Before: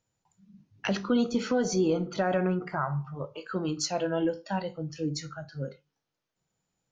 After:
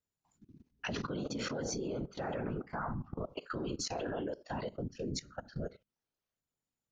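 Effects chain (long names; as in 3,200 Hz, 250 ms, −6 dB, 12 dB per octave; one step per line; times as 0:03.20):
random phases in short frames
output level in coarse steps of 19 dB
level +1 dB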